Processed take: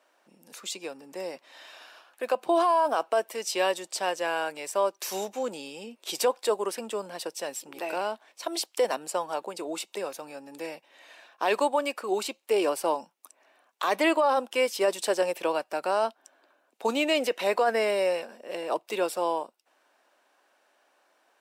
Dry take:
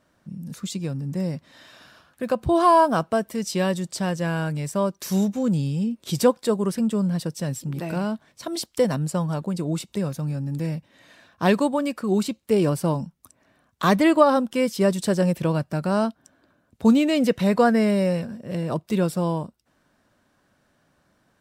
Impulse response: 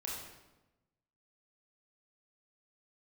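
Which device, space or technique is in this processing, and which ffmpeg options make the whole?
laptop speaker: -af "highpass=f=350:w=0.5412,highpass=f=350:w=1.3066,bass=f=250:g=-6,treble=f=4000:g=1,equalizer=f=820:t=o:w=0.59:g=6,equalizer=f=2600:t=o:w=0.53:g=6,alimiter=limit=0.211:level=0:latency=1:release=20,volume=0.841"

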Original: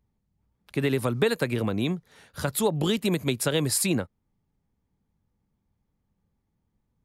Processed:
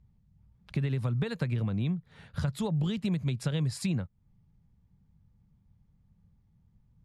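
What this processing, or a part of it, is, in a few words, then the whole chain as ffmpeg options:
jukebox: -filter_complex "[0:a]lowpass=5800,lowshelf=f=220:t=q:w=1.5:g=10.5,acompressor=threshold=0.0282:ratio=3,asettb=1/sr,asplit=3[s0][s1][s2];[s0]atrim=end=1.794[s3];[s1]atrim=start=1.79:end=2.39,asetpts=PTS-STARTPTS,afade=t=in:d=0.004:c=qsin,afade=t=out:st=0.596:d=0.004:c=qsin,equalizer=f=6000:w=2.2:g=-9[s4];[s2]atrim=start=2.386[s5];[s3][s4]acrossfade=d=0.004:c1=hsin:c2=qsin[s6];[s6][s5]acrossfade=d=0.004:c1=qsin:c2=hsin"

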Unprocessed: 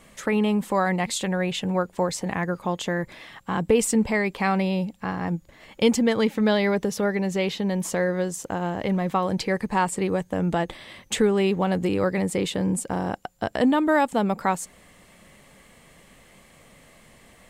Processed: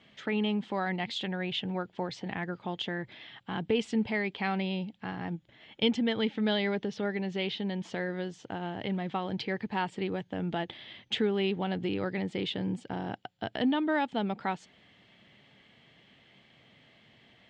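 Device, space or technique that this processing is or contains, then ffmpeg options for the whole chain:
guitar cabinet: -filter_complex "[0:a]asettb=1/sr,asplit=3[s0][s1][s2];[s0]atrim=end=5.354[s3];[s1]atrim=start=5.35:end=6.25,asetpts=PTS-STARTPTS,afade=t=in:d=0.004:c=qsin,afade=t=out:st=0.896:d=0.004:c=qsin,bandreject=f=4600:w=9.6[s4];[s2]atrim=start=6.246[s5];[s3][s4]acrossfade=d=0.004:c1=hsin:c2=qsin[s6];[s6][s5]acrossfade=d=0.004:c1=qsin:c2=hsin,highpass=110,equalizer=f=120:t=q:w=4:g=6,equalizer=f=170:t=q:w=4:g=-3,equalizer=f=530:t=q:w=4:g=-7,equalizer=f=1100:t=q:w=4:g=-8,equalizer=f=3200:t=q:w=4:g=8,lowpass=f=4500:w=0.5412,lowpass=f=4500:w=1.3066,volume=0.473"

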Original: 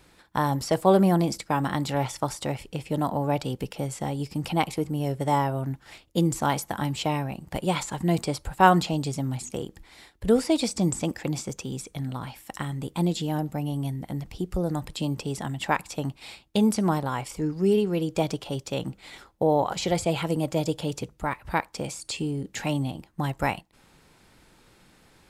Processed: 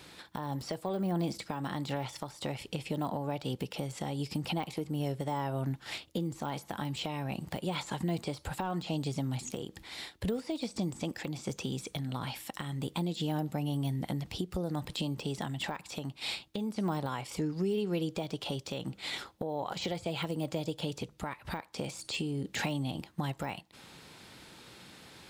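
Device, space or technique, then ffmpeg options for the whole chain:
broadcast voice chain: -af "highpass=85,deesser=0.95,acompressor=threshold=0.02:ratio=4,equalizer=f=3700:t=o:w=1.1:g=6,alimiter=level_in=1.41:limit=0.0631:level=0:latency=1:release=333,volume=0.708,volume=1.58"

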